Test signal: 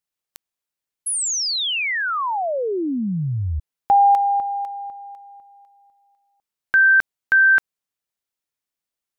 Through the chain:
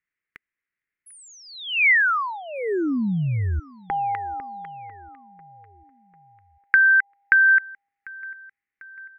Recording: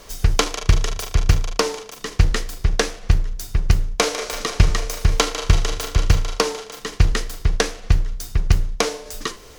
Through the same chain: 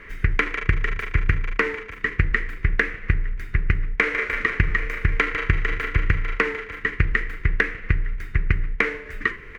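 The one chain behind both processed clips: FFT filter 410 Hz 0 dB, 710 Hz -15 dB, 2 kHz +15 dB, 3.4 kHz -12 dB, 5.3 kHz -24 dB; compression 6:1, threshold -15 dBFS; feedback delay 746 ms, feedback 55%, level -23 dB

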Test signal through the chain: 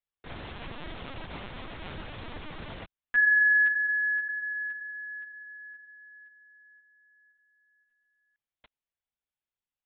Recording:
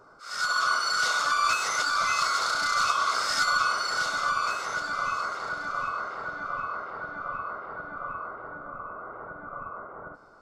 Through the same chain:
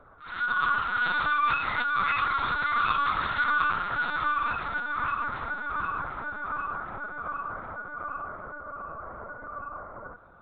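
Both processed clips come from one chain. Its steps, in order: LPC vocoder at 8 kHz pitch kept

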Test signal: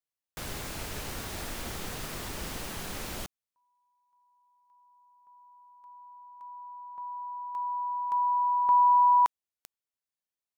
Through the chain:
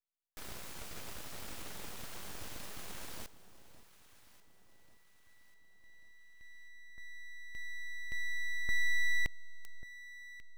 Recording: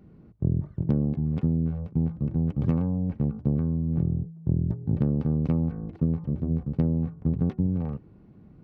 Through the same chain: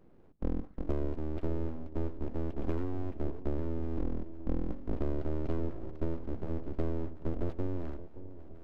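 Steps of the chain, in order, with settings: full-wave rectifier; echo whose repeats swap between lows and highs 570 ms, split 930 Hz, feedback 67%, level -13.5 dB; trim -6.5 dB

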